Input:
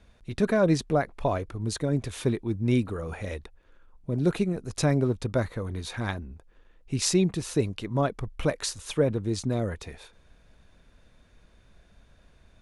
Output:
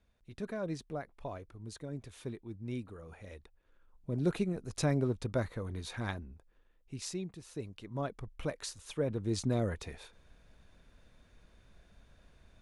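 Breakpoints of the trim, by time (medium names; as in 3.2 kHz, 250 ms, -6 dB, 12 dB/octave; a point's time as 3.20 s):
3.23 s -15.5 dB
4.13 s -6.5 dB
6.15 s -6.5 dB
7.38 s -18.5 dB
8.08 s -10.5 dB
8.97 s -10.5 dB
9.37 s -3.5 dB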